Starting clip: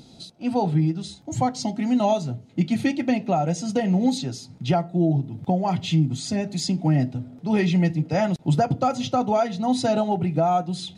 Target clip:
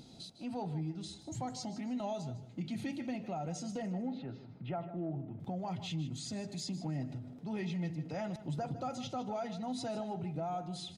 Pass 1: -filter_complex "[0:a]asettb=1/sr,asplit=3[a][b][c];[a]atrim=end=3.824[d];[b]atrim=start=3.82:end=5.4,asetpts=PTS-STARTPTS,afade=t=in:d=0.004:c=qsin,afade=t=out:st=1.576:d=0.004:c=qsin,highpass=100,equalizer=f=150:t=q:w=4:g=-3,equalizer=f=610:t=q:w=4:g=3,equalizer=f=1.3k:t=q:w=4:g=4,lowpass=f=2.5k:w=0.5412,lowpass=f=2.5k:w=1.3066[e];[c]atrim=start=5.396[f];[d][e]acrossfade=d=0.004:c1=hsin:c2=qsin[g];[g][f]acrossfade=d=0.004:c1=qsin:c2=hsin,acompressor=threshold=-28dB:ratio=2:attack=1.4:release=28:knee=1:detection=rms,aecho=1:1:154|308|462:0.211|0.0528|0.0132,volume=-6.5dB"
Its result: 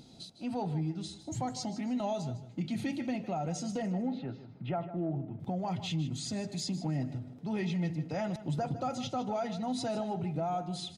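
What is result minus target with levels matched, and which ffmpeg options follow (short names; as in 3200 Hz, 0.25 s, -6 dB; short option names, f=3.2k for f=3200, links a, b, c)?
compressor: peak gain reduction -4.5 dB
-filter_complex "[0:a]asettb=1/sr,asplit=3[a][b][c];[a]atrim=end=3.824[d];[b]atrim=start=3.82:end=5.4,asetpts=PTS-STARTPTS,afade=t=in:d=0.004:c=qsin,afade=t=out:st=1.576:d=0.004:c=qsin,highpass=100,equalizer=f=150:t=q:w=4:g=-3,equalizer=f=610:t=q:w=4:g=3,equalizer=f=1.3k:t=q:w=4:g=4,lowpass=f=2.5k:w=0.5412,lowpass=f=2.5k:w=1.3066[e];[c]atrim=start=5.396[f];[d][e]acrossfade=d=0.004:c1=hsin:c2=qsin[g];[g][f]acrossfade=d=0.004:c1=qsin:c2=hsin,acompressor=threshold=-37dB:ratio=2:attack=1.4:release=28:knee=1:detection=rms,aecho=1:1:154|308|462:0.211|0.0528|0.0132,volume=-6.5dB"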